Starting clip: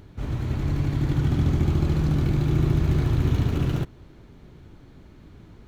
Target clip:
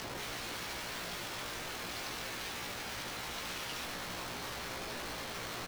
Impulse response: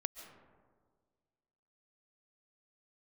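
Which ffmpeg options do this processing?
-filter_complex "[0:a]equalizer=frequency=920:width=4.1:gain=6,bandreject=frequency=50:width_type=h:width=6,bandreject=frequency=100:width_type=h:width=6,bandreject=frequency=150:width_type=h:width=6,bandreject=frequency=200:width_type=h:width=6,bandreject=frequency=250:width_type=h:width=6,bandreject=frequency=300:width_type=h:width=6,bandreject=frequency=350:width_type=h:width=6,bandreject=frequency=400:width_type=h:width=6,areverse,acompressor=threshold=-35dB:ratio=6,areverse,alimiter=level_in=12dB:limit=-24dB:level=0:latency=1:release=54,volume=-12dB,acrossover=split=1500[link_01][link_02];[link_01]aeval=exprs='(mod(398*val(0)+1,2)-1)/398':channel_layout=same[link_03];[link_02]lowpass=frequency=5500:width_type=q:width=3.1[link_04];[link_03][link_04]amix=inputs=2:normalize=0,asplit=2[link_05][link_06];[link_06]adelay=17,volume=-4dB[link_07];[link_05][link_07]amix=inputs=2:normalize=0,volume=13dB"

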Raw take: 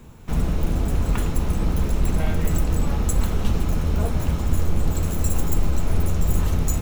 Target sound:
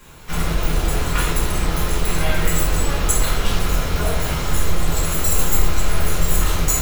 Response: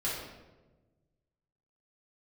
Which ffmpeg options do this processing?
-filter_complex "[0:a]tiltshelf=frequency=650:gain=-8.5[link_01];[1:a]atrim=start_sample=2205,atrim=end_sample=6615[link_02];[link_01][link_02]afir=irnorm=-1:irlink=0"

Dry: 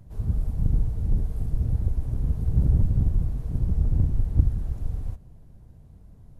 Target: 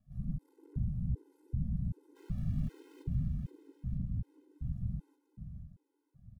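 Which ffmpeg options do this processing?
ffmpeg -i in.wav -filter_complex "[0:a]asettb=1/sr,asplit=3[link_01][link_02][link_03];[link_01]atrim=end=3.714[link_04];[link_02]atrim=start=3.71:end=4.61,asetpts=PTS-STARTPTS,afade=type=in:duration=0.004:curve=qsin,afade=type=out:start_time=0.896:duration=0.004:curve=qsin,acompressor=threshold=-22dB:ratio=6[link_05];[link_03]atrim=start=4.606[link_06];[link_04][link_05]acrossfade=duration=0.004:curve1=hsin:curve2=qsin[link_07];[link_07][link_06]acrossfade=duration=0.004:curve1=qsin:curve2=hsin,lowshelf=frequency=130:gain=-10.5,bandreject=frequency=580:width=12,aecho=1:1:3.7:0.34,asoftclip=type=tanh:threshold=-27dB,asettb=1/sr,asplit=3[link_08][link_09][link_10];[link_08]atrim=end=0.444[link_11];[link_09]atrim=start=0.44:end=0.88,asetpts=PTS-STARTPTS,afade=type=in:duration=0.004:curve=qsin,afade=type=out:start_time=0.436:duration=0.004:curve=qsin,aeval=exprs='0.0447*(cos(1*acos(clip(val(0)/0.0447,-1,1)))-cos(1*PI/2))+0.00562*(cos(6*acos(clip(val(0)/0.0447,-1,1)))-cos(6*PI/2))':channel_layout=same[link_12];[link_10]atrim=start=0.876[link_13];[link_11][link_12]acrossfade=duration=0.004:curve1=hsin:curve2=qsin[link_14];[link_14][link_13]acrossfade=duration=0.004:curve1=qsin:curve2=hsin,equalizer=frequency=240:width_type=o:width=0.61:gain=-12,afwtdn=0.0158,aeval=exprs='val(0)*sin(2*PI*93*n/s)':channel_layout=same,asplit=3[link_15][link_16][link_17];[link_15]afade=type=out:start_time=2.15:duration=0.02[link_18];[link_16]aeval=exprs='val(0)*gte(abs(val(0)),0.00251)':channel_layout=same,afade=type=in:start_time=2.15:duration=0.02,afade=type=out:start_time=3.02:duration=0.02[link_19];[link_17]afade=type=in:start_time=3.02:duration=0.02[link_20];[link_18][link_19][link_20]amix=inputs=3:normalize=0,aecho=1:1:476|952|1428|1904|2380|2856:0.398|0.195|0.0956|0.0468|0.023|0.0112,afftfilt=real='re*gt(sin(2*PI*1.3*pts/sr)*(1-2*mod(floor(b*sr/1024/270),2)),0)':imag='im*gt(sin(2*PI*1.3*pts/sr)*(1-2*mod(floor(b*sr/1024/270),2)),0)':win_size=1024:overlap=0.75,volume=2.5dB" out.wav

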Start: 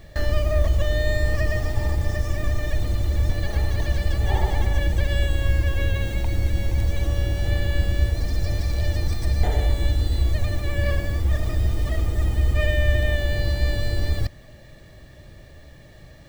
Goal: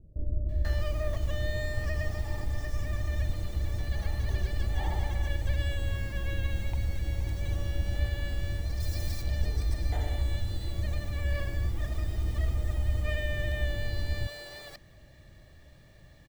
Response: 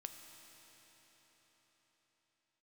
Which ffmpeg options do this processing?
-filter_complex "[0:a]asettb=1/sr,asplit=3[link_01][link_02][link_03];[link_01]atrim=end=8.314[link_04];[link_02]atrim=start=8.31:end=8.73,asetpts=PTS-STARTPTS,afade=type=in:duration=0.004:curve=qsin,afade=type=out:start_time=0.416:duration=0.004:curve=qsin,highshelf=frequency=5300:gain=11[link_05];[link_03]atrim=start=8.726[link_06];[link_04][link_05]acrossfade=duration=0.004:curve1=hsin:curve2=qsin[link_07];[link_07][link_06]acrossfade=duration=0.004:curve1=qsin:curve2=hsin,acrossover=split=430[link_08][link_09];[link_09]adelay=490[link_10];[link_08][link_10]amix=inputs=2:normalize=0,volume=-8.5dB"

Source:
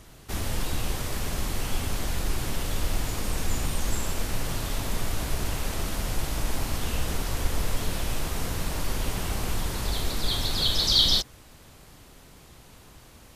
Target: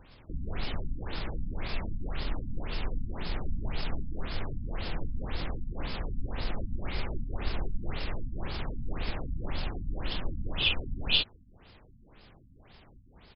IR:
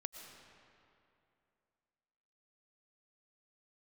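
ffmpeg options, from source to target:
-af "crystalizer=i=1.5:c=0,asetrate=35002,aresample=44100,atempo=1.25992,afftfilt=real='re*lt(b*sr/1024,260*pow(5400/260,0.5+0.5*sin(2*PI*1.9*pts/sr)))':imag='im*lt(b*sr/1024,260*pow(5400/260,0.5+0.5*sin(2*PI*1.9*pts/sr)))':win_size=1024:overlap=0.75,volume=-4dB"

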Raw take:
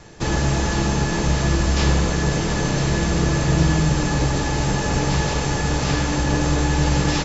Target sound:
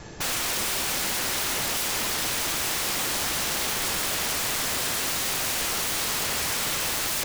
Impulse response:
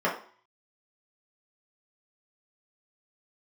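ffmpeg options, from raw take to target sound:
-filter_complex "[0:a]asplit=2[link_01][link_02];[link_02]alimiter=limit=-13.5dB:level=0:latency=1:release=55,volume=-3dB[link_03];[link_01][link_03]amix=inputs=2:normalize=0,aeval=exprs='(mod(10*val(0)+1,2)-1)/10':channel_layout=same,volume=-2.5dB"

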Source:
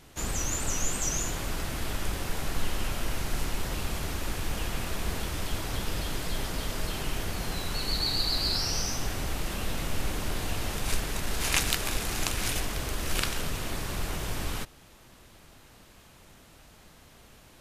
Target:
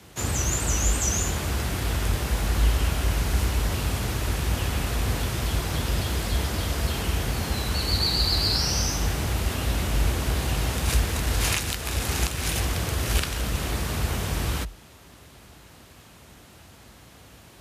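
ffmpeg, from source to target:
ffmpeg -i in.wav -af "afreqshift=44,alimiter=limit=-13.5dB:level=0:latency=1:release=379,volume=4.5dB" out.wav

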